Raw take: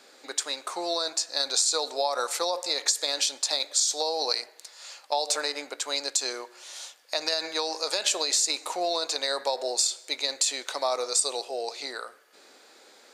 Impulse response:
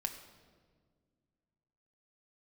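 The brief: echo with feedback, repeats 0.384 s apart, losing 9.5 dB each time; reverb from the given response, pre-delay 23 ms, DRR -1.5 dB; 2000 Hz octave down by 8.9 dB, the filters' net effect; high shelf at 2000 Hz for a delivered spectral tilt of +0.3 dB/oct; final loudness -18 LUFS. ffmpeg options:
-filter_complex "[0:a]highshelf=f=2k:g=-8.5,equalizer=f=2k:t=o:g=-6.5,aecho=1:1:384|768|1152|1536:0.335|0.111|0.0365|0.012,asplit=2[a][b];[1:a]atrim=start_sample=2205,adelay=23[c];[b][c]afir=irnorm=-1:irlink=0,volume=1.5dB[d];[a][d]amix=inputs=2:normalize=0,volume=10.5dB"

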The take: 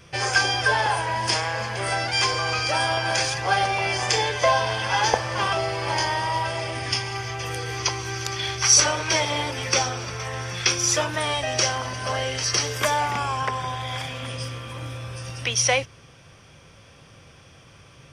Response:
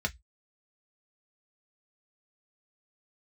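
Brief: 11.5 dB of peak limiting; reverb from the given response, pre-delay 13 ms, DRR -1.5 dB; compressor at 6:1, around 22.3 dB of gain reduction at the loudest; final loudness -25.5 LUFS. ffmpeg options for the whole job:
-filter_complex "[0:a]acompressor=threshold=-37dB:ratio=6,alimiter=level_in=7.5dB:limit=-24dB:level=0:latency=1,volume=-7.5dB,asplit=2[a][b];[1:a]atrim=start_sample=2205,adelay=13[c];[b][c]afir=irnorm=-1:irlink=0,volume=-4.5dB[d];[a][d]amix=inputs=2:normalize=0,volume=11.5dB"

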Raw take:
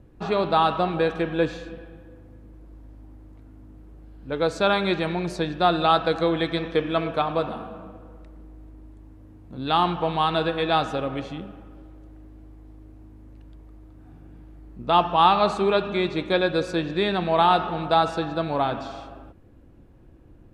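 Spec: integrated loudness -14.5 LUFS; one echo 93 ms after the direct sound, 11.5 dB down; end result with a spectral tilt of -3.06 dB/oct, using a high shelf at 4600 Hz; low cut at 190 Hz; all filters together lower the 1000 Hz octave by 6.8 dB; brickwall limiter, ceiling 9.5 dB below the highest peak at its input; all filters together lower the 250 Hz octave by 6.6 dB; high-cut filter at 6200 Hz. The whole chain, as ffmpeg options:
-af "highpass=190,lowpass=6.2k,equalizer=f=250:t=o:g=-8,equalizer=f=1k:t=o:g=-8.5,highshelf=f=4.6k:g=-5.5,alimiter=limit=-20dB:level=0:latency=1,aecho=1:1:93:0.266,volume=17dB"

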